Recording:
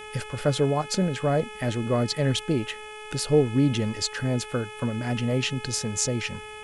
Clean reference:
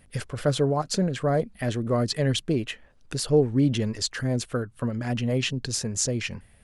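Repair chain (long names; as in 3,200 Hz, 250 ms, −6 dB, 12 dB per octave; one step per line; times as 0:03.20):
hum removal 426.8 Hz, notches 8
notch filter 2,500 Hz, Q 30
noise reduction from a noise print 12 dB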